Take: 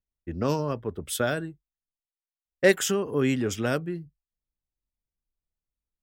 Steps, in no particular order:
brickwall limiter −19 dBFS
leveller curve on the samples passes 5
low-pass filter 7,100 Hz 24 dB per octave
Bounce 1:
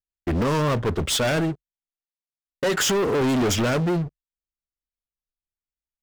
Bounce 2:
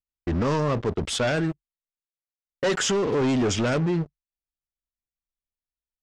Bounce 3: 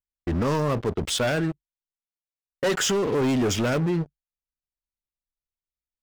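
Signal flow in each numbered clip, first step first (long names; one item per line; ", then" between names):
brickwall limiter, then low-pass filter, then leveller curve on the samples
leveller curve on the samples, then brickwall limiter, then low-pass filter
low-pass filter, then leveller curve on the samples, then brickwall limiter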